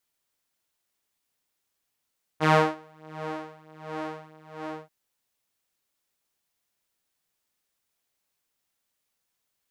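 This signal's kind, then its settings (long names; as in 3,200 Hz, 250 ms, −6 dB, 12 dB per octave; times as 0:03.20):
subtractive patch with tremolo D#3, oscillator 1 saw, interval 0 semitones, detune 17 cents, oscillator 2 level −3 dB, sub −27 dB, filter bandpass, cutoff 610 Hz, Q 0.82, filter envelope 1 octave, attack 35 ms, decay 0.32 s, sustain −18.5 dB, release 0.25 s, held 2.24 s, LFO 1.4 Hz, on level 21.5 dB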